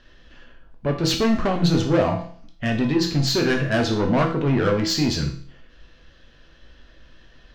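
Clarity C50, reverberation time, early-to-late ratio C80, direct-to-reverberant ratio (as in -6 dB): 8.0 dB, 0.50 s, 12.0 dB, 1.5 dB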